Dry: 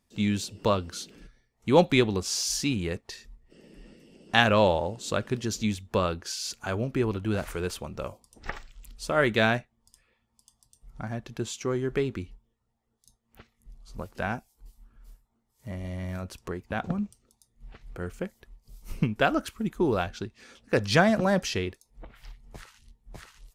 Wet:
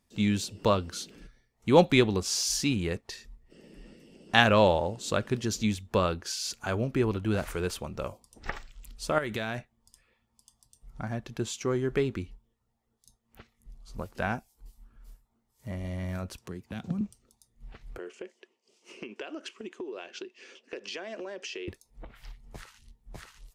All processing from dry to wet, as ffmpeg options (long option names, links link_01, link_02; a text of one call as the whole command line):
ffmpeg -i in.wav -filter_complex "[0:a]asettb=1/sr,asplit=3[link_01][link_02][link_03];[link_01]atrim=end=9.184[link_04];[link_02]atrim=start=9.18:end=9.58,asetpts=PTS-STARTPTS,afade=type=in:duration=0.004:curve=qsin,afade=type=out:start_time=0.396:duration=0.004:curve=qsin,highshelf=frequency=6800:gain=6.5,acompressor=threshold=-28dB:ratio=12:attack=3.2:release=140:knee=1:detection=peak[link_05];[link_03]atrim=start=9.576[link_06];[link_04][link_05]acrossfade=duration=0.004:curve1=hsin:curve2=qsin[link_07];[link_07][link_06]acrossfade=duration=0.004:curve1=qsin:curve2=hsin,asettb=1/sr,asplit=3[link_08][link_09][link_10];[link_08]atrim=end=16.384[link_11];[link_09]atrim=start=16.38:end=17.01,asetpts=PTS-STARTPTS,afade=type=in:duration=0.004:curve=qsin,afade=type=out:start_time=0.626:duration=0.004:curve=qsin,highpass=110,acrossover=split=280|3000[link_12][link_13][link_14];[link_13]acompressor=threshold=-49dB:ratio=3:attack=3.2:release=140:knee=2.83:detection=peak[link_15];[link_12][link_15][link_14]amix=inputs=3:normalize=0[link_16];[link_10]atrim=start=17.006[link_17];[link_11][link_16]acrossfade=duration=0.004:curve1=hsin:curve2=qsin[link_18];[link_18][link_17]acrossfade=duration=0.004:curve1=qsin:curve2=hsin,asettb=1/sr,asplit=3[link_19][link_20][link_21];[link_19]atrim=end=17.984[link_22];[link_20]atrim=start=17.98:end=21.68,asetpts=PTS-STARTPTS,afade=type=in:duration=0.004:curve=qsin,afade=type=out:start_time=3.696:duration=0.004:curve=qsin,highpass=frequency=320:width=0.5412,highpass=frequency=320:width=1.3066,equalizer=frequency=370:width_type=q:width=4:gain=8,equalizer=frequency=800:width_type=q:width=4:gain=-6,equalizer=frequency=1300:width_type=q:width=4:gain=-6,equalizer=frequency=2800:width_type=q:width=4:gain=9,equalizer=frequency=3900:width_type=q:width=4:gain=-5,lowpass=frequency=7200:width=0.5412,lowpass=frequency=7200:width=1.3066,acompressor=threshold=-35dB:ratio=10:attack=3.2:release=140:knee=1:detection=peak[link_23];[link_21]atrim=start=21.676[link_24];[link_22][link_23]acrossfade=duration=0.004:curve1=hsin:curve2=qsin[link_25];[link_25][link_24]acrossfade=duration=0.004:curve1=qsin:curve2=hsin" out.wav